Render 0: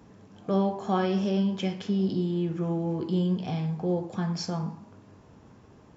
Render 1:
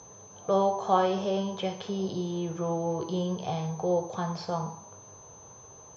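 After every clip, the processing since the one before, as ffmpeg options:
-filter_complex "[0:a]aeval=exprs='val(0)+0.00447*sin(2*PI*6200*n/s)':c=same,acrossover=split=3300[a][b];[b]acompressor=threshold=-53dB:ratio=4:attack=1:release=60[c];[a][c]amix=inputs=2:normalize=0,equalizer=f=125:t=o:w=1:g=4,equalizer=f=250:t=o:w=1:g=-11,equalizer=f=500:t=o:w=1:g=9,equalizer=f=1k:t=o:w=1:g=9,equalizer=f=2k:t=o:w=1:g=-4,equalizer=f=4k:t=o:w=1:g=11,volume=-3dB"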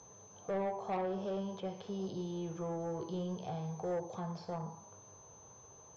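-filter_complex "[0:a]acrossover=split=980[a][b];[b]acompressor=threshold=-46dB:ratio=10[c];[a][c]amix=inputs=2:normalize=0,asoftclip=type=tanh:threshold=-23dB,volume=-7dB"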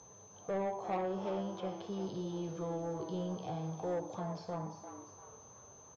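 -filter_complex "[0:a]asplit=5[a][b][c][d][e];[b]adelay=346,afreqshift=140,volume=-10.5dB[f];[c]adelay=692,afreqshift=280,volume=-19.1dB[g];[d]adelay=1038,afreqshift=420,volume=-27.8dB[h];[e]adelay=1384,afreqshift=560,volume=-36.4dB[i];[a][f][g][h][i]amix=inputs=5:normalize=0"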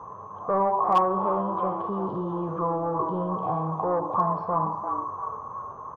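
-filter_complex "[0:a]asplit=2[a][b];[b]alimiter=level_in=13.5dB:limit=-24dB:level=0:latency=1,volume=-13.5dB,volume=2.5dB[c];[a][c]amix=inputs=2:normalize=0,lowpass=f=1.1k:t=q:w=12,asoftclip=type=hard:threshold=-16dB,volume=3.5dB"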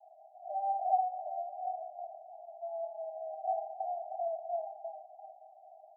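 -af "asuperpass=centerf=700:order=12:qfactor=4.1,volume=-1.5dB"

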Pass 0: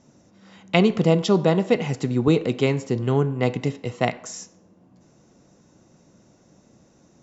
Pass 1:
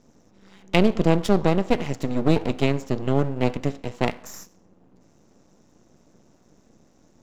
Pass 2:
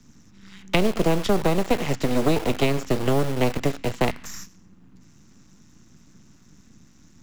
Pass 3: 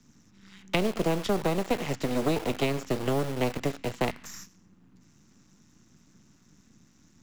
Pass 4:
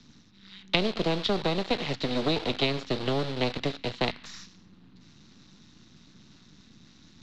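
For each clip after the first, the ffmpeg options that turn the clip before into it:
-af "equalizer=f=260:w=1.6:g=4.5,aeval=exprs='max(val(0),0)':c=same"
-filter_complex "[0:a]acrossover=split=92|370|5400[a][b][c][d];[a]acompressor=threshold=-31dB:ratio=4[e];[b]acompressor=threshold=-34dB:ratio=4[f];[c]acompressor=threshold=-29dB:ratio=4[g];[d]acompressor=threshold=-52dB:ratio=4[h];[e][f][g][h]amix=inputs=4:normalize=0,acrossover=split=290|1100[i][j][k];[j]acrusher=bits=6:mix=0:aa=0.000001[l];[i][l][k]amix=inputs=3:normalize=0,volume=7.5dB"
-af "lowshelf=f=74:g=-6.5,volume=-5dB"
-af "lowpass=f=4k:t=q:w=4.3,areverse,acompressor=mode=upward:threshold=-45dB:ratio=2.5,areverse,volume=-1dB"

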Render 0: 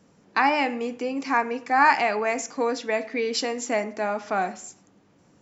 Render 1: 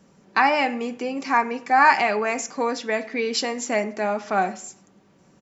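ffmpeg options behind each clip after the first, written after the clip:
-af "aecho=1:1:5.2:0.33,volume=2dB"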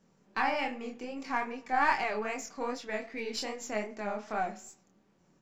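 -af "aeval=exprs='if(lt(val(0),0),0.708*val(0),val(0))':c=same,flanger=delay=22.5:depth=5.9:speed=2.5,volume=-7dB"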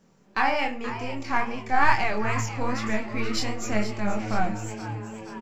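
-filter_complex "[0:a]asubboost=boost=9.5:cutoff=140,asplit=8[a][b][c][d][e][f][g][h];[b]adelay=476,afreqshift=110,volume=-12dB[i];[c]adelay=952,afreqshift=220,volume=-16.3dB[j];[d]adelay=1428,afreqshift=330,volume=-20.6dB[k];[e]adelay=1904,afreqshift=440,volume=-24.9dB[l];[f]adelay=2380,afreqshift=550,volume=-29.2dB[m];[g]adelay=2856,afreqshift=660,volume=-33.5dB[n];[h]adelay=3332,afreqshift=770,volume=-37.8dB[o];[a][i][j][k][l][m][n][o]amix=inputs=8:normalize=0,volume=6.5dB"

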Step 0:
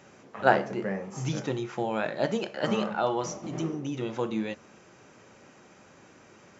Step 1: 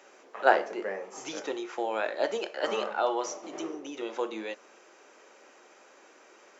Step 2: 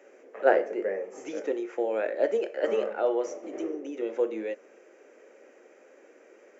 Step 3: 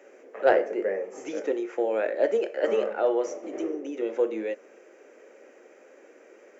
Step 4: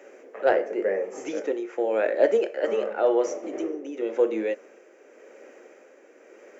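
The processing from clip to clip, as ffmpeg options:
-af "highpass=f=350:w=0.5412,highpass=f=350:w=1.3066"
-af "equalizer=f=125:t=o:w=1:g=-5,equalizer=f=250:t=o:w=1:g=7,equalizer=f=500:t=o:w=1:g=12,equalizer=f=1k:t=o:w=1:g=-8,equalizer=f=2k:t=o:w=1:g=7,equalizer=f=4k:t=o:w=1:g=-11,volume=-5dB"
-af "aeval=exprs='0.501*(cos(1*acos(clip(val(0)/0.501,-1,1)))-cos(1*PI/2))+0.0316*(cos(5*acos(clip(val(0)/0.501,-1,1)))-cos(5*PI/2))':c=same"
-af "tremolo=f=0.91:d=0.44,volume=4dB"

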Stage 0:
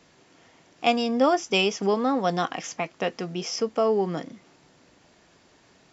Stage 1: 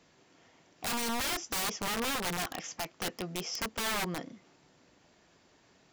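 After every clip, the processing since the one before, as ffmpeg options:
-af "aeval=exprs='(mod(11.9*val(0)+1,2)-1)/11.9':c=same,volume=-6dB"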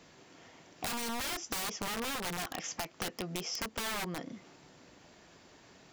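-af "acompressor=threshold=-41dB:ratio=6,volume=6dB"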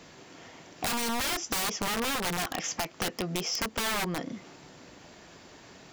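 -af "asoftclip=type=tanh:threshold=-27.5dB,volume=7dB"

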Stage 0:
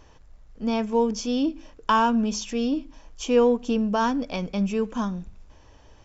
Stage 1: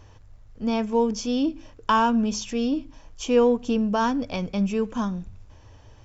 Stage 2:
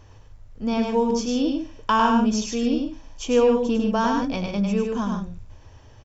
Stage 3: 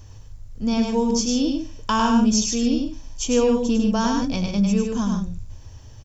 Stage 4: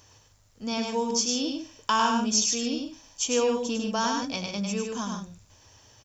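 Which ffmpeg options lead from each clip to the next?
-af "equalizer=f=100:w=3.1:g=14"
-af "aecho=1:1:102|148.7:0.631|0.355"
-af "bass=f=250:g=9,treble=f=4k:g=14,volume=-2.5dB"
-af "highpass=f=730:p=1"

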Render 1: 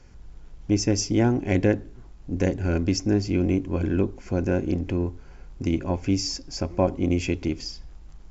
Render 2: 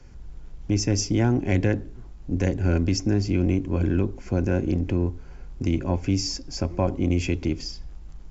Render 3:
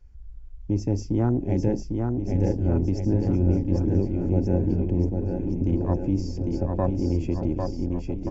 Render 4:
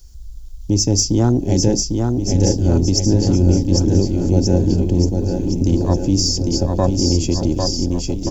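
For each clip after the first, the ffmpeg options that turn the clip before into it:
-filter_complex "[0:a]lowshelf=f=340:g=4,acrossover=split=130|790[a][b][c];[b]alimiter=limit=-16.5dB:level=0:latency=1[d];[a][d][c]amix=inputs=3:normalize=0"
-af "afwtdn=0.0355,aecho=1:1:800|1480|2058|2549|2967:0.631|0.398|0.251|0.158|0.1,volume=-1.5dB"
-af "aexciter=amount=4.9:drive=9.6:freq=3.4k,volume=7.5dB"

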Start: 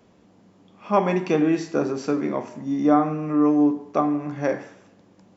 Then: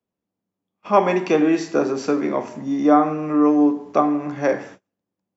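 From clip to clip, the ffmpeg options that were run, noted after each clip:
-filter_complex "[0:a]agate=range=-33dB:threshold=-44dB:ratio=16:detection=peak,acrossover=split=240|670[a][b][c];[a]acompressor=threshold=-40dB:ratio=6[d];[d][b][c]amix=inputs=3:normalize=0,volume=4.5dB"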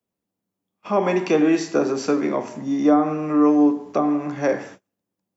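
-filter_complex "[0:a]highshelf=f=6.2k:g=6,acrossover=split=520[a][b];[b]alimiter=limit=-16dB:level=0:latency=1:release=110[c];[a][c]amix=inputs=2:normalize=0"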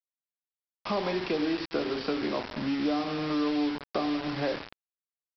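-af "acompressor=threshold=-30dB:ratio=3,aresample=11025,acrusher=bits=5:mix=0:aa=0.000001,aresample=44100"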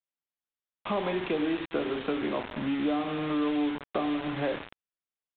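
-af "aresample=8000,aresample=44100"

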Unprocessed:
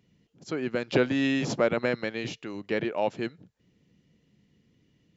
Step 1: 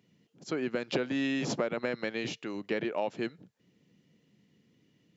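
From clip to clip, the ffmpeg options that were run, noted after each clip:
-af "highpass=140,acompressor=threshold=-27dB:ratio=6"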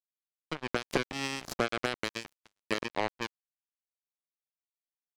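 -af "acrusher=bits=3:mix=0:aa=0.5,volume=2dB"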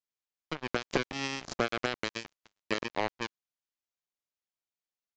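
-af "aresample=16000,aresample=44100"

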